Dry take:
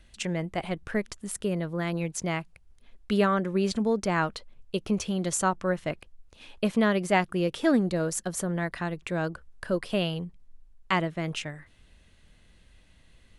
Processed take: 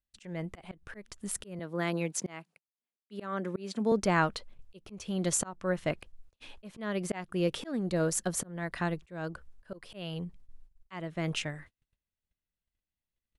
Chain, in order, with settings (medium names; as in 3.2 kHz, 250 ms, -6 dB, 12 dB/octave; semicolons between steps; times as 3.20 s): 1.59–3.92 s: high-pass 180 Hz 24 dB/octave; gate -49 dBFS, range -36 dB; slow attack 391 ms